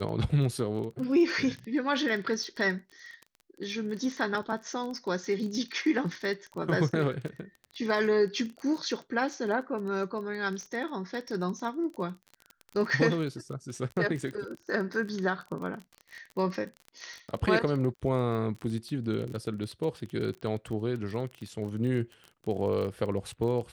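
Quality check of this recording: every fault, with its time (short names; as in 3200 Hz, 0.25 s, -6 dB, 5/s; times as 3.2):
crackle 25/s -35 dBFS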